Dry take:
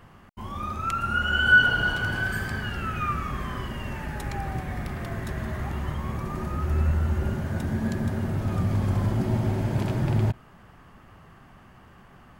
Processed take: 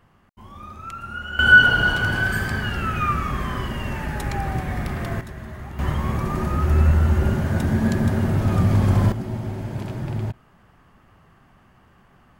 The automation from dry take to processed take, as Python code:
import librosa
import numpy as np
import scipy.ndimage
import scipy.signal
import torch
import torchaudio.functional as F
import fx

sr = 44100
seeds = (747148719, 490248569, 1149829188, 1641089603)

y = fx.gain(x, sr, db=fx.steps((0.0, -7.0), (1.39, 5.5), (5.21, -4.5), (5.79, 7.0), (9.12, -3.5)))